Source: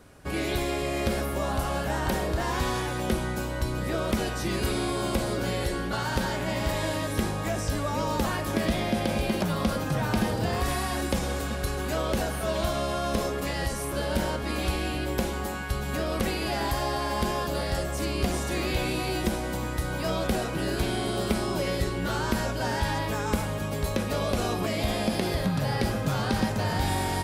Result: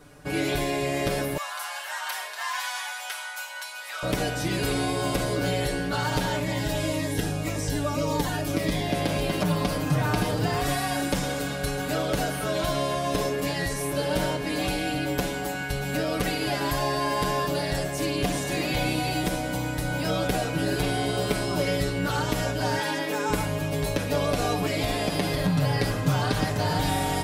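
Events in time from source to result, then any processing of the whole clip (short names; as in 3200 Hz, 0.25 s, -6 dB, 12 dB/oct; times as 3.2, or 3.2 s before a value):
1.37–4.03 inverse Chebyshev high-pass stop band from 160 Hz, stop band 80 dB
6.39–8.9 cascading phaser falling 1.8 Hz
22.79–23.3 HPF 200 Hz 24 dB/oct
whole clip: comb 6.8 ms, depth 89%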